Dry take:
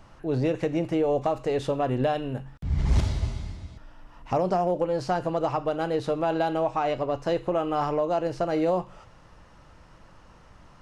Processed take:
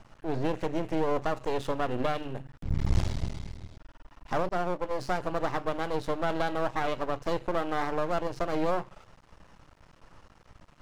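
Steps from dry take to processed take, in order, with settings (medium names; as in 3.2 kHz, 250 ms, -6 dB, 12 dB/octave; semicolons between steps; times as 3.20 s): half-wave rectifier; 4.49–4.91 s: expander -23 dBFS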